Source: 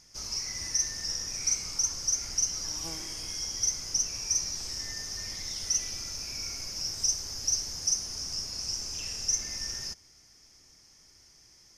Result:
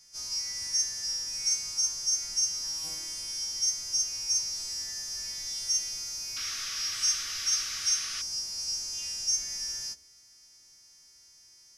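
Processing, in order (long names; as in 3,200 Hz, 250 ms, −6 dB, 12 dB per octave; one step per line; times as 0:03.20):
every partial snapped to a pitch grid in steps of 2 semitones
sound drawn into the spectrogram noise, 0:06.36–0:08.22, 1,100–6,500 Hz −33 dBFS
hum removal 62.65 Hz, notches 10
level −7 dB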